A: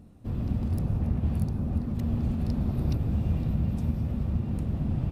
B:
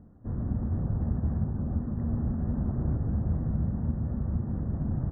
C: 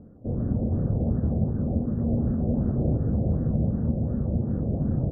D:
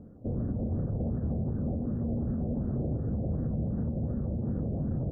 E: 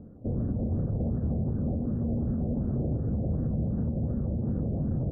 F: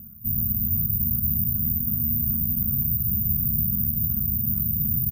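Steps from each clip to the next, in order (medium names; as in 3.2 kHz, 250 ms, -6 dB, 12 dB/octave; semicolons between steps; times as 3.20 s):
steep low-pass 1.8 kHz 72 dB/octave; trim -1.5 dB
graphic EQ 125/250/500/1000 Hz +4/+4/+11/-10 dB; LFO low-pass sine 2.7 Hz 660–1500 Hz
peak limiter -23 dBFS, peak gain reduction 9.5 dB; trim -1 dB
distance through air 470 m; trim +2.5 dB
delay 227 ms -21 dB; careless resampling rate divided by 3×, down none, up zero stuff; brick-wall FIR band-stop 240–1100 Hz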